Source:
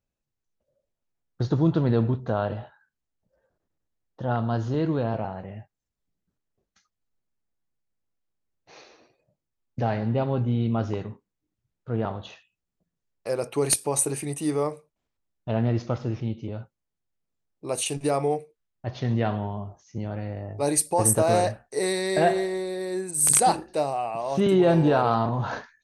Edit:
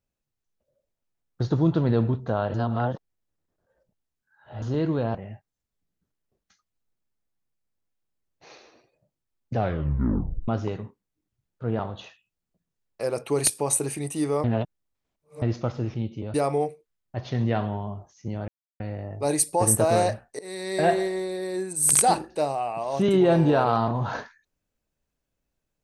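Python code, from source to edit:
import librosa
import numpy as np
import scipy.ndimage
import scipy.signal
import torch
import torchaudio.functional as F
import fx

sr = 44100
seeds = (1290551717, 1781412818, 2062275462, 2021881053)

y = fx.edit(x, sr, fx.reverse_span(start_s=2.54, length_s=2.08),
    fx.cut(start_s=5.15, length_s=0.26),
    fx.tape_stop(start_s=9.81, length_s=0.93),
    fx.reverse_span(start_s=14.7, length_s=0.98),
    fx.cut(start_s=16.6, length_s=1.44),
    fx.insert_silence(at_s=20.18, length_s=0.32),
    fx.fade_in_from(start_s=21.77, length_s=0.5, floor_db=-24.0), tone=tone)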